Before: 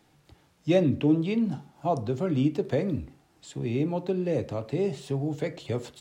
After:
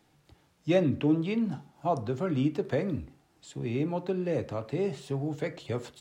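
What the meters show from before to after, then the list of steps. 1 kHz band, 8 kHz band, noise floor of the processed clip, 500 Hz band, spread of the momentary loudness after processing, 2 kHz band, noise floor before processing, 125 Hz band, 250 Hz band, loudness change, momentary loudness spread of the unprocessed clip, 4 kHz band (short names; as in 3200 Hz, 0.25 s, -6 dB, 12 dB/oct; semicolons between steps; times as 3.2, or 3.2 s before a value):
-0.5 dB, -3.0 dB, -67 dBFS, -2.5 dB, 10 LU, 0.0 dB, -64 dBFS, -3.0 dB, -3.0 dB, -2.5 dB, 10 LU, -2.0 dB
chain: dynamic EQ 1400 Hz, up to +6 dB, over -47 dBFS, Q 1.1; gain -3 dB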